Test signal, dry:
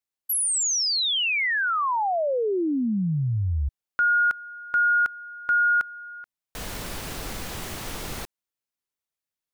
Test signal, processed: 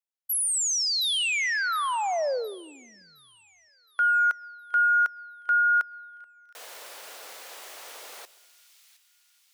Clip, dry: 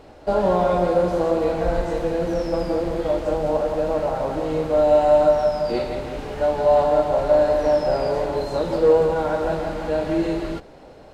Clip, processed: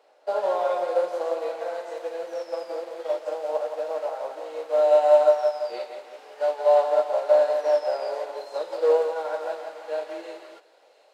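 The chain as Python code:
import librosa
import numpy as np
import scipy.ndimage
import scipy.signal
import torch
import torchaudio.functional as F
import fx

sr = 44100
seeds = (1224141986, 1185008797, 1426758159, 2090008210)

y = scipy.signal.sosfilt(scipy.signal.cheby1(3, 1.0, 510.0, 'highpass', fs=sr, output='sos'), x)
y = fx.echo_wet_highpass(y, sr, ms=715, feedback_pct=48, hz=2700.0, wet_db=-13)
y = fx.rev_plate(y, sr, seeds[0], rt60_s=1.1, hf_ratio=0.75, predelay_ms=95, drr_db=19.5)
y = fx.upward_expand(y, sr, threshold_db=-34.0, expansion=1.5)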